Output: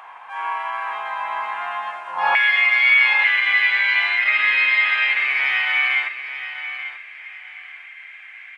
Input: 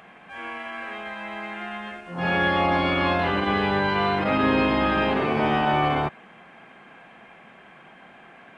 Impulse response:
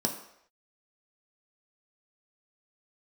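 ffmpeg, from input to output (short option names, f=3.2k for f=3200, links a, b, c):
-af "asetnsamples=n=441:p=0,asendcmd='2.35 highpass f 2100',highpass=f=950:t=q:w=7,aecho=1:1:887|1774|2661:0.282|0.0705|0.0176,volume=1.5dB"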